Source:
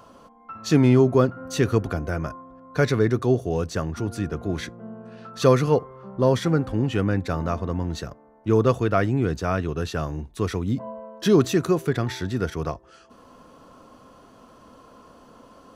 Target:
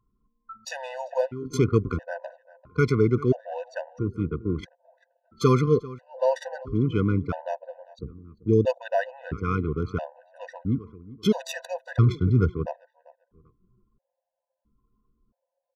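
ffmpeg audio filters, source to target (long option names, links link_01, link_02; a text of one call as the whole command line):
ffmpeg -i in.wav -filter_complex "[0:a]asplit=3[link_01][link_02][link_03];[link_01]afade=type=out:start_time=7.58:duration=0.02[link_04];[link_02]asuperstop=centerf=1400:order=4:qfactor=0.53,afade=type=in:start_time=7.58:duration=0.02,afade=type=out:start_time=8.65:duration=0.02[link_05];[link_03]afade=type=in:start_time=8.65:duration=0.02[link_06];[link_04][link_05][link_06]amix=inputs=3:normalize=0,asettb=1/sr,asplit=3[link_07][link_08][link_09];[link_07]atrim=end=11.424[link_10];[link_08]atrim=start=11.42:end=12.53,asetpts=PTS-STARTPTS,afade=type=in:duration=0.004:curve=qsin,afade=type=out:start_time=1.106:duration=0.004:curve=qsin,equalizer=frequency=110:width_type=o:width=1.4:gain=10[link_11];[link_09]atrim=start=12.526[link_12];[link_10][link_11]acrossfade=duration=0.004:curve1=hsin:curve2=qsin[link_13];[link_13][link_12]acrossfade=duration=0.004:curve1=qsin:curve2=hsin,asplit=2[link_14][link_15];[link_15]aecho=0:1:693|1386|2079:0.075|0.0307|0.0126[link_16];[link_14][link_16]amix=inputs=2:normalize=0,anlmdn=63.1,asplit=2[link_17][link_18];[link_18]adelay=392,lowpass=frequency=2100:poles=1,volume=-18.5dB,asplit=2[link_19][link_20];[link_20]adelay=392,lowpass=frequency=2100:poles=1,volume=0.26[link_21];[link_19][link_21]amix=inputs=2:normalize=0[link_22];[link_17][link_22]amix=inputs=2:normalize=0,afftfilt=real='re*gt(sin(2*PI*0.75*pts/sr)*(1-2*mod(floor(b*sr/1024/500),2)),0)':imag='im*gt(sin(2*PI*0.75*pts/sr)*(1-2*mod(floor(b*sr/1024/500),2)),0)':win_size=1024:overlap=0.75" out.wav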